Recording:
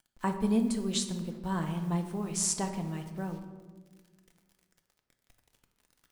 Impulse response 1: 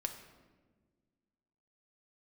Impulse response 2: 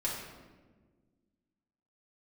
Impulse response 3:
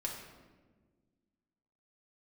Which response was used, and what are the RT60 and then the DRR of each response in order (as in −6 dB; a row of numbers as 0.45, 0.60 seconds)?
1; 1.5, 1.4, 1.4 seconds; 5.0, −5.5, −1.5 decibels